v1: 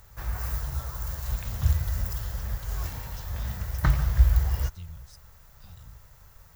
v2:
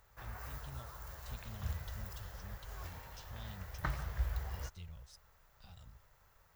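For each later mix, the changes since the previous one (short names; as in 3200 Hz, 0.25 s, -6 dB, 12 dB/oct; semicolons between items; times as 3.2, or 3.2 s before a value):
background -8.0 dB; master: add tone controls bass -9 dB, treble -7 dB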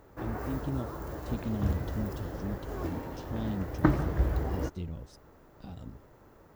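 master: remove passive tone stack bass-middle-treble 10-0-10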